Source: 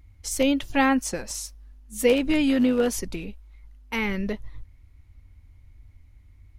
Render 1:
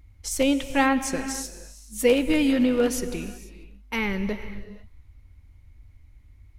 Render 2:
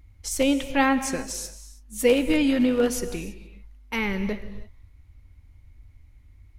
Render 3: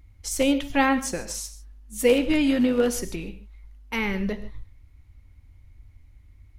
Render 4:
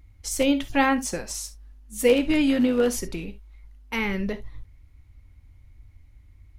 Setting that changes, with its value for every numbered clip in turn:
non-linear reverb, gate: 520, 350, 170, 90 ms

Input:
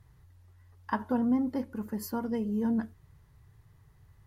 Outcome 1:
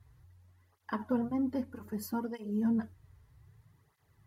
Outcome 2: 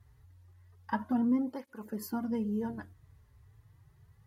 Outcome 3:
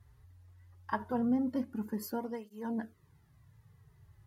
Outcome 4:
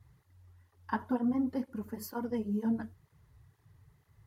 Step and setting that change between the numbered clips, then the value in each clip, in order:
tape flanging out of phase, nulls at: 0.63, 0.3, 0.2, 2.1 Hz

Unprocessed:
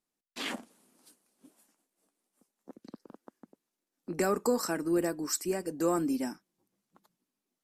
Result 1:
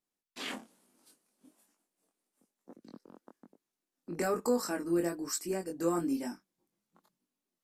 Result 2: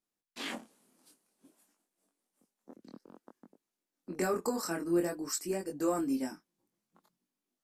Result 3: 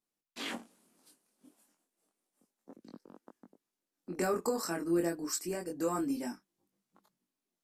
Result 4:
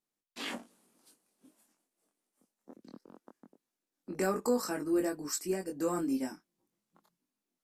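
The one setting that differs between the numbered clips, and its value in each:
chorus, rate: 1.1, 0.53, 0.3, 0.21 Hz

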